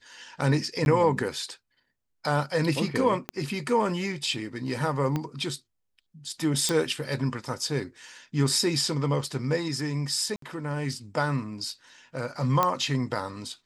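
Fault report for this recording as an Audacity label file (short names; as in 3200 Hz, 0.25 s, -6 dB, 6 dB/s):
0.850000	0.860000	gap 11 ms
3.290000	3.290000	pop -15 dBFS
5.160000	5.160000	pop -16 dBFS
6.690000	6.690000	pop
10.360000	10.420000	gap 63 ms
12.630000	12.630000	pop -9 dBFS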